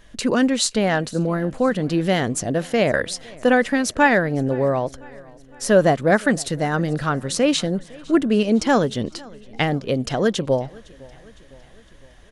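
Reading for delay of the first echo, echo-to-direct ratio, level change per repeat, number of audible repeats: 0.508 s, -22.5 dB, -5.0 dB, 3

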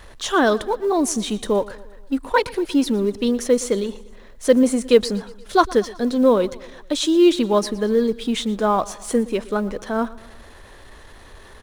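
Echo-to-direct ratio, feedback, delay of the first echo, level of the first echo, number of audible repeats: -18.5 dB, 55%, 0.118 s, -20.0 dB, 3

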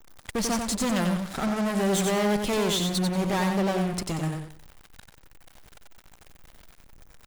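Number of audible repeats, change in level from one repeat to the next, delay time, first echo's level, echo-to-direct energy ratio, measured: 3, -11.5 dB, 92 ms, -5.0 dB, -4.5 dB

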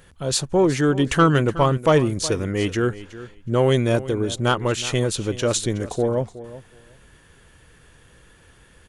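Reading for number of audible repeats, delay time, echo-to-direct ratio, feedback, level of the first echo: 2, 0.369 s, -16.0 dB, 16%, -16.0 dB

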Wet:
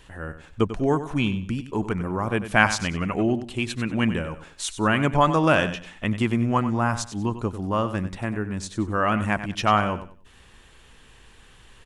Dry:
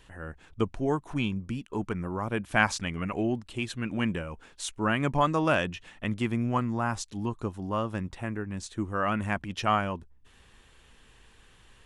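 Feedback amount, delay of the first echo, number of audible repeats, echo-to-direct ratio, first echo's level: 25%, 95 ms, 2, -11.5 dB, -12.0 dB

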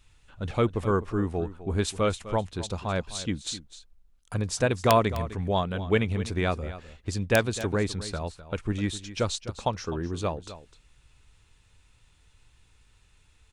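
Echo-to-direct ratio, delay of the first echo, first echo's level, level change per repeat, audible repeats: -14.5 dB, 0.255 s, -14.5 dB, no steady repeat, 1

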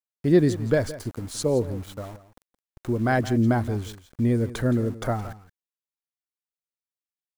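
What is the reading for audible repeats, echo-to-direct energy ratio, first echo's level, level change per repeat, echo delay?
1, -15.5 dB, -15.5 dB, no steady repeat, 0.169 s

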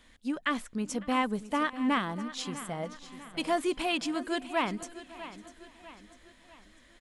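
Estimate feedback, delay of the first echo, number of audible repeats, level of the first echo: no steady repeat, 0.553 s, 6, -22.5 dB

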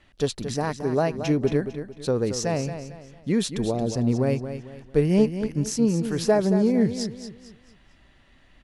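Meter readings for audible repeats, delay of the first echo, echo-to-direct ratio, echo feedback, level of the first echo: 3, 0.225 s, -9.5 dB, 35%, -10.0 dB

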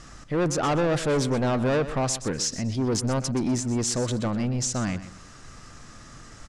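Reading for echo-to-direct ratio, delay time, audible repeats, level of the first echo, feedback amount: -13.0 dB, 0.124 s, 2, -13.5 dB, 28%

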